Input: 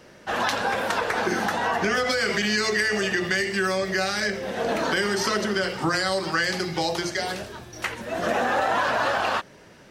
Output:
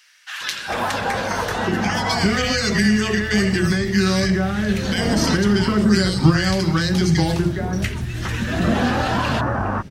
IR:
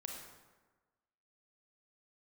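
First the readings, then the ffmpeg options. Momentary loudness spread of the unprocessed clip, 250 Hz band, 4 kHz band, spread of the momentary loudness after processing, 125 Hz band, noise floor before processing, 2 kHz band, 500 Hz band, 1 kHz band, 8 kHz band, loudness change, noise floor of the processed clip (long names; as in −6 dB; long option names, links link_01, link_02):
6 LU, +12.0 dB, +3.5 dB, 7 LU, +16.5 dB, −49 dBFS, +0.5 dB, +1.5 dB, +1.0 dB, +4.0 dB, +5.0 dB, −31 dBFS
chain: -filter_complex "[0:a]asubboost=boost=9.5:cutoff=180,acrossover=split=1600[link_01][link_02];[link_01]adelay=410[link_03];[link_03][link_02]amix=inputs=2:normalize=0,volume=4dB"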